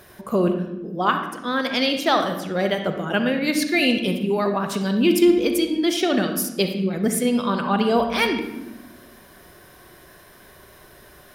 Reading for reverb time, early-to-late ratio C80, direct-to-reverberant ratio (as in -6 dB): 1.0 s, 9.0 dB, 5.5 dB